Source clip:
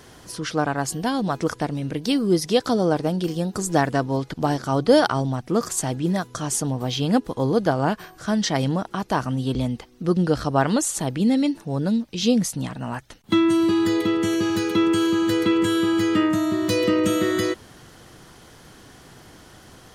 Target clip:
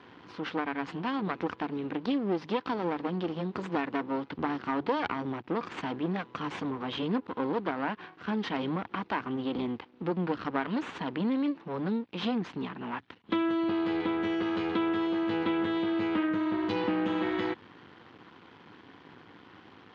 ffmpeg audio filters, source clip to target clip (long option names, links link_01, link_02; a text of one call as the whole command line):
ffmpeg -i in.wav -af "aeval=exprs='max(val(0),0)':channel_layout=same,highpass=frequency=100:width=0.5412,highpass=frequency=100:width=1.3066,equalizer=frequency=130:width_type=q:width=4:gain=-9,equalizer=frequency=290:width_type=q:width=4:gain=4,equalizer=frequency=620:width_type=q:width=4:gain=-7,equalizer=frequency=1000:width_type=q:width=4:gain=4,lowpass=frequency=3300:width=0.5412,lowpass=frequency=3300:width=1.3066,acompressor=threshold=-28dB:ratio=2.5" out.wav